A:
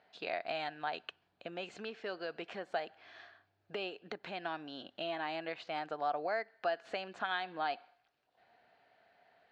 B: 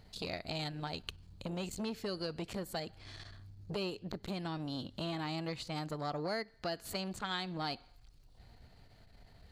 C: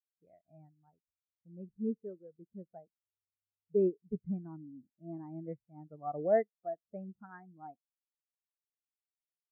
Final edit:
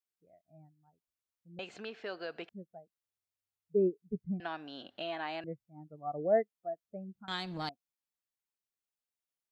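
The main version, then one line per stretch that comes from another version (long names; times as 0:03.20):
C
0:01.59–0:02.49: punch in from A
0:04.40–0:05.44: punch in from A
0:07.28–0:07.69: punch in from B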